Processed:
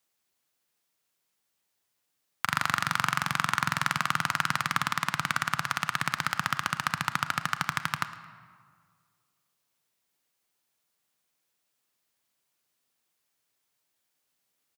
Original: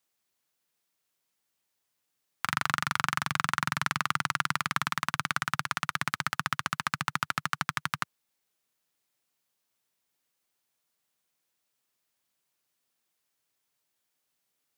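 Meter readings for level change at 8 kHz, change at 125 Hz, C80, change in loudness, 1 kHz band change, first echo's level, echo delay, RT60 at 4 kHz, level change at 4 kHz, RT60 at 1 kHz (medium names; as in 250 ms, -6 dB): +1.5 dB, +1.5 dB, 12.5 dB, +2.0 dB, +2.0 dB, -18.5 dB, 110 ms, 1.1 s, +2.0 dB, 1.9 s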